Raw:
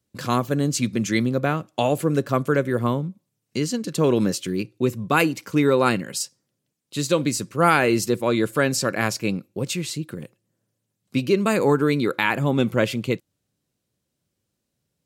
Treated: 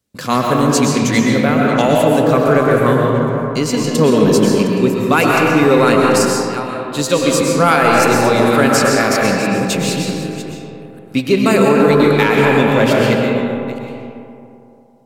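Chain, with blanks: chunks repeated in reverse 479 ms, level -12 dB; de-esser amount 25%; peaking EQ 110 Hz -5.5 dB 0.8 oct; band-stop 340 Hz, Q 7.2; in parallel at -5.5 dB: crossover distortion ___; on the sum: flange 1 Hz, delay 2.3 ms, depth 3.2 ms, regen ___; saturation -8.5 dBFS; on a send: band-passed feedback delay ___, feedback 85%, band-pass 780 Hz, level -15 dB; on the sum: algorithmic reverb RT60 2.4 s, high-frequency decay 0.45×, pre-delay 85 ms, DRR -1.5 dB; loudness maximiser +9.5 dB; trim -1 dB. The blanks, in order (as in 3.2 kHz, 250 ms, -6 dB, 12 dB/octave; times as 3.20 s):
-35.5 dBFS, -88%, 81 ms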